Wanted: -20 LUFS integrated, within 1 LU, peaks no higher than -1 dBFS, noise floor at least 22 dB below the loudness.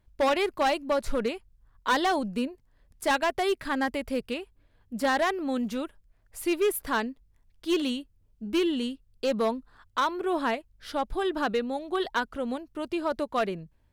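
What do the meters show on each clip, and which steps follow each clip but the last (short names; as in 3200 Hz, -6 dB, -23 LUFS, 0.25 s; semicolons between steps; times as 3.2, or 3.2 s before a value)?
clipped 1.7%; flat tops at -19.5 dBFS; loudness -29.0 LUFS; peak -19.5 dBFS; loudness target -20.0 LUFS
-> clip repair -19.5 dBFS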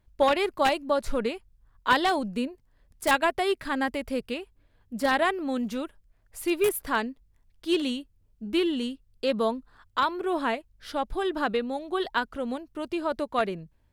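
clipped 0.0%; loudness -28.0 LUFS; peak -10.5 dBFS; loudness target -20.0 LUFS
-> gain +8 dB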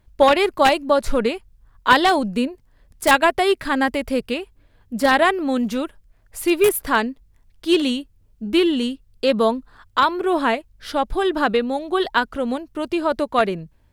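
loudness -20.0 LUFS; peak -2.5 dBFS; noise floor -58 dBFS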